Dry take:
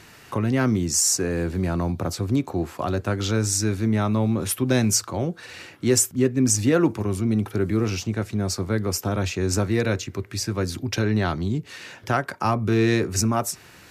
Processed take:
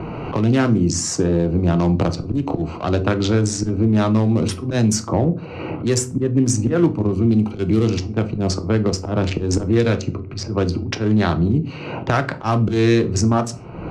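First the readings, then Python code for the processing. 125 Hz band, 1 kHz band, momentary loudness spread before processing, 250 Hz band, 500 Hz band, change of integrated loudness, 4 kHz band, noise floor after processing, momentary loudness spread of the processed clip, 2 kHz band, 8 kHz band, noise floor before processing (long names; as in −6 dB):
+5.5 dB, +3.5 dB, 9 LU, +5.5 dB, +4.5 dB, +4.0 dB, +0.5 dB, −32 dBFS, 7 LU, +1.5 dB, −3.0 dB, −48 dBFS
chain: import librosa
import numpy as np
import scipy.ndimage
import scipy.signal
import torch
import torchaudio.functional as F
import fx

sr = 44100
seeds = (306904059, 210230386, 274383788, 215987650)

y = fx.wiener(x, sr, points=25)
y = fx.recorder_agc(y, sr, target_db=-15.5, rise_db_per_s=20.0, max_gain_db=30)
y = scipy.signal.sosfilt(scipy.signal.butter(2, 8200.0, 'lowpass', fs=sr, output='sos'), y)
y = fx.env_lowpass(y, sr, base_hz=2000.0, full_db=-16.5)
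y = fx.auto_swell(y, sr, attack_ms=165.0)
y = fx.room_shoebox(y, sr, seeds[0], volume_m3=200.0, walls='furnished', distance_m=0.59)
y = fx.band_squash(y, sr, depth_pct=70)
y = y * librosa.db_to_amplitude(5.5)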